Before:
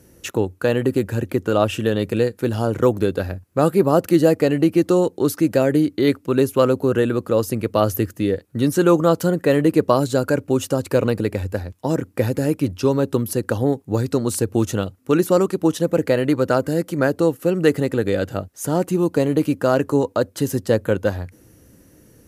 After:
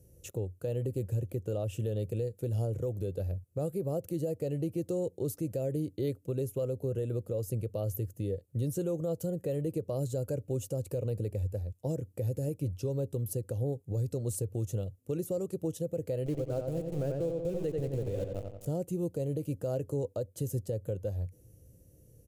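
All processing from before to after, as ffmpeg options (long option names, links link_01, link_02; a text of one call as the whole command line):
ffmpeg -i in.wav -filter_complex "[0:a]asettb=1/sr,asplit=3[link_01][link_02][link_03];[link_01]atrim=end=16.264[link_04];[link_02]atrim=start=16.26:end=18.66,asetpts=PTS-STARTPTS,afade=type=in:duration=0.004:curve=qsin,afade=type=out:start_time=2.396:duration=0.004:curve=qsin,aeval=exprs='val(0)*gte(abs(val(0)),0.0708)':channel_layout=same,highshelf=frequency=6000:gain=-10,asplit=2[link_05][link_06];[link_06]adelay=89,lowpass=frequency=3700:poles=1,volume=-5dB,asplit=2[link_07][link_08];[link_08]adelay=89,lowpass=frequency=3700:poles=1,volume=0.48,asplit=2[link_09][link_10];[link_10]adelay=89,lowpass=frequency=3700:poles=1,volume=0.48,asplit=2[link_11][link_12];[link_12]adelay=89,lowpass=frequency=3700:poles=1,volume=0.48,asplit=2[link_13][link_14];[link_14]adelay=89,lowpass=frequency=3700:poles=1,volume=0.48,asplit=2[link_15][link_16];[link_16]adelay=89,lowpass=frequency=3700:poles=1,volume=0.48[link_17];[link_05][link_07][link_09][link_11][link_13][link_15][link_17]amix=inputs=7:normalize=0,atrim=end_sample=105840[link_18];[link_03]atrim=start=18.656[link_19];[link_04][link_18]acrossfade=duration=0.004:curve1=hsin:curve2=qsin[link_20];[link_20][link_19]acrossfade=duration=0.004:curve1=qsin:curve2=hsin,firequalizer=gain_entry='entry(120,0);entry(240,-15);entry(510,-5);entry(960,-23);entry(1600,-26);entry(2600,-17);entry(4600,-16);entry(6900,-8);entry(14000,-6)':delay=0.05:min_phase=1,alimiter=limit=-21dB:level=0:latency=1:release=171,volume=-3.5dB" out.wav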